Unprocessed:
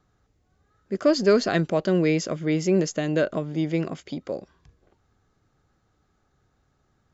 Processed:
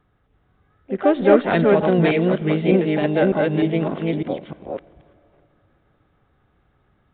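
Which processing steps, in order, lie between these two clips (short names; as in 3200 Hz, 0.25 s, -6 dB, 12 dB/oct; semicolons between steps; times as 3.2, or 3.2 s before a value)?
reverse delay 0.302 s, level -1 dB; harmoniser +5 st -9 dB; on a send at -21 dB: reverb RT60 2.9 s, pre-delay 14 ms; on the sum: downsampling 8000 Hz; gain +2.5 dB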